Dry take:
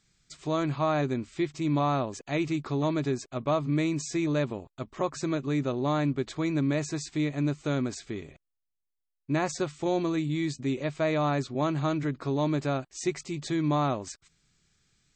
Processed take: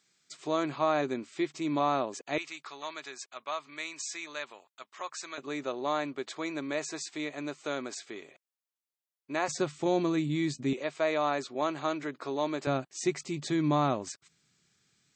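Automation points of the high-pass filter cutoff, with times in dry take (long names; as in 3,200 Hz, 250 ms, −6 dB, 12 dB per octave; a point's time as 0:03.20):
300 Hz
from 0:02.38 1,200 Hz
from 0:05.38 480 Hz
from 0:09.48 140 Hz
from 0:10.73 410 Hz
from 0:12.67 140 Hz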